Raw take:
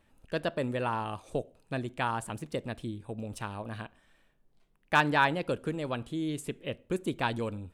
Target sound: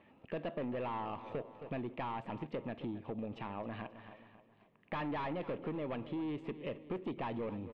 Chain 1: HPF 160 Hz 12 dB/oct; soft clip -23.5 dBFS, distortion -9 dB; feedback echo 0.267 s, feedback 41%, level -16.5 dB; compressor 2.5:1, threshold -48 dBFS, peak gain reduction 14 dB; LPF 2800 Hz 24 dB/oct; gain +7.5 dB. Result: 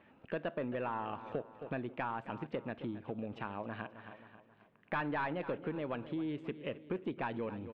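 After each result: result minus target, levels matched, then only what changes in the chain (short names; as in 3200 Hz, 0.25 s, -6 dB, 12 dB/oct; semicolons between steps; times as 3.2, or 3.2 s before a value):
2000 Hz band +4.5 dB; soft clip: distortion -5 dB
add after LPF: bell 1500 Hz -11.5 dB 0.23 oct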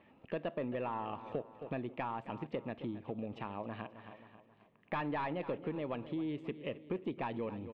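soft clip: distortion -5 dB
change: soft clip -33.5 dBFS, distortion -4 dB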